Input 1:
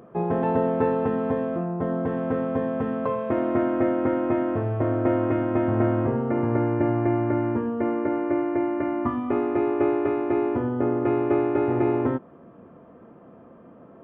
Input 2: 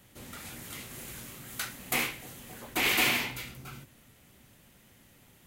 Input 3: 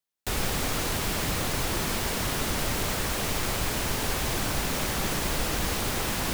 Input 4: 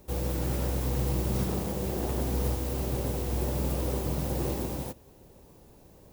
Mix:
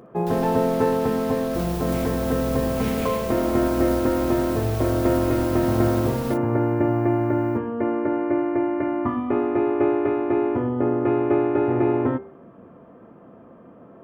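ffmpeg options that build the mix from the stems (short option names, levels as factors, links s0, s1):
-filter_complex "[0:a]volume=1.26[s0];[1:a]acrusher=bits=7:mix=0:aa=0.000001,volume=0.211[s1];[2:a]equalizer=f=7400:w=1.7:g=-4.5,volume=0.299[s2];[3:a]adelay=1450,volume=0.891[s3];[s0][s1][s2][s3]amix=inputs=4:normalize=0,bandreject=f=78.29:t=h:w=4,bandreject=f=156.58:t=h:w=4,bandreject=f=234.87:t=h:w=4,bandreject=f=313.16:t=h:w=4,bandreject=f=391.45:t=h:w=4,bandreject=f=469.74:t=h:w=4,bandreject=f=548.03:t=h:w=4,bandreject=f=626.32:t=h:w=4,bandreject=f=704.61:t=h:w=4,bandreject=f=782.9:t=h:w=4,bandreject=f=861.19:t=h:w=4,bandreject=f=939.48:t=h:w=4,bandreject=f=1017.77:t=h:w=4,bandreject=f=1096.06:t=h:w=4,bandreject=f=1174.35:t=h:w=4,bandreject=f=1252.64:t=h:w=4,bandreject=f=1330.93:t=h:w=4,bandreject=f=1409.22:t=h:w=4,bandreject=f=1487.51:t=h:w=4,bandreject=f=1565.8:t=h:w=4,bandreject=f=1644.09:t=h:w=4,bandreject=f=1722.38:t=h:w=4,bandreject=f=1800.67:t=h:w=4,bandreject=f=1878.96:t=h:w=4,bandreject=f=1957.25:t=h:w=4,bandreject=f=2035.54:t=h:w=4,bandreject=f=2113.83:t=h:w=4,bandreject=f=2192.12:t=h:w=4,bandreject=f=2270.41:t=h:w=4,bandreject=f=2348.7:t=h:w=4,bandreject=f=2426.99:t=h:w=4,bandreject=f=2505.28:t=h:w=4,bandreject=f=2583.57:t=h:w=4,bandreject=f=2661.86:t=h:w=4,bandreject=f=2740.15:t=h:w=4,bandreject=f=2818.44:t=h:w=4,bandreject=f=2896.73:t=h:w=4,bandreject=f=2975.02:t=h:w=4"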